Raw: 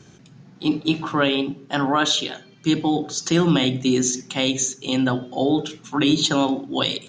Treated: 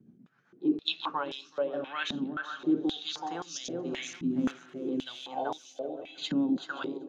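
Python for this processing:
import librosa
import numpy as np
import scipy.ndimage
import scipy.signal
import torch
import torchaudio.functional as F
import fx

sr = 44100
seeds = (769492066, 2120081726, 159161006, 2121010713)

y = fx.dead_time(x, sr, dead_ms=0.11, at=(4.13, 4.86))
y = fx.comb_fb(y, sr, f0_hz=330.0, decay_s=0.18, harmonics='all', damping=0.0, mix_pct=90, at=(5.58, 6.18))
y = fx.echo_feedback(y, sr, ms=382, feedback_pct=33, wet_db=-4.5)
y = fx.rotary_switch(y, sr, hz=7.5, then_hz=0.9, switch_at_s=1.0)
y = fx.peak_eq(y, sr, hz=930.0, db=fx.line((0.68, -0.5), (1.09, 9.0)), octaves=2.0, at=(0.68, 1.09), fade=0.02)
y = fx.echo_swing(y, sr, ms=700, ratio=3, feedback_pct=30, wet_db=-15.5)
y = fx.filter_held_bandpass(y, sr, hz=3.8, low_hz=230.0, high_hz=5600.0)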